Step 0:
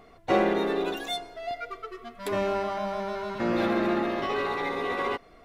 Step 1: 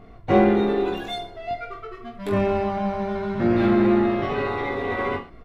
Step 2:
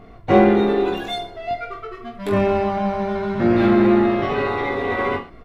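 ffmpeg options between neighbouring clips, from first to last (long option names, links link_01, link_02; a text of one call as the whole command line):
ffmpeg -i in.wav -filter_complex "[0:a]bass=frequency=250:gain=13,treble=frequency=4000:gain=-9,asplit=2[link_01][link_02];[link_02]aecho=0:1:20|43|69.45|99.87|134.8:0.631|0.398|0.251|0.158|0.1[link_03];[link_01][link_03]amix=inputs=2:normalize=0" out.wav
ffmpeg -i in.wav -af "lowshelf=frequency=150:gain=-3,volume=4dB" out.wav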